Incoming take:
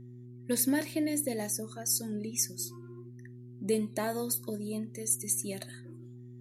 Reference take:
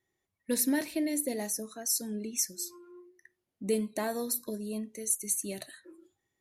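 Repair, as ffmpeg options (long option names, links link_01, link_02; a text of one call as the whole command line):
ffmpeg -i in.wav -af "bandreject=frequency=122.4:width_type=h:width=4,bandreject=frequency=244.8:width_type=h:width=4,bandreject=frequency=367.2:width_type=h:width=4" out.wav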